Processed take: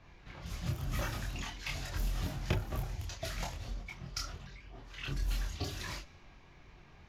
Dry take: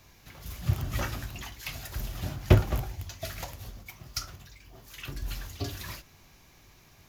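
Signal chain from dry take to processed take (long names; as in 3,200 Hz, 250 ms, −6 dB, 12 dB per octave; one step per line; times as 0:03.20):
downward compressor 3 to 1, threshold −33 dBFS, peak gain reduction 15 dB
low-pass that shuts in the quiet parts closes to 2,400 Hz, open at −31.5 dBFS
multi-voice chorus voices 6, 0.46 Hz, delay 26 ms, depth 3.6 ms
level +3.5 dB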